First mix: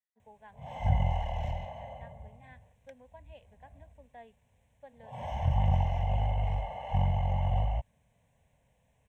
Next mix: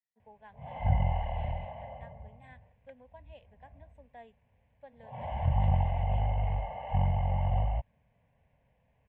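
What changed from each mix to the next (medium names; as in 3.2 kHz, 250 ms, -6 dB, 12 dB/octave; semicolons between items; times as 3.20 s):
background: add low-pass 2.8 kHz 24 dB/octave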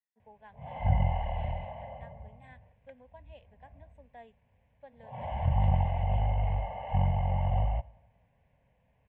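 reverb: on, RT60 1.2 s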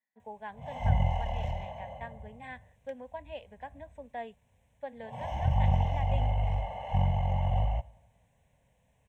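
speech +11.5 dB; background: remove low-pass 2.8 kHz 24 dB/octave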